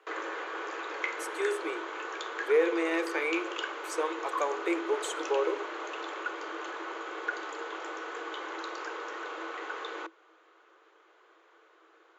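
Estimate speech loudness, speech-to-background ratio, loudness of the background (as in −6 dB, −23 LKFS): −31.5 LKFS, 5.5 dB, −37.0 LKFS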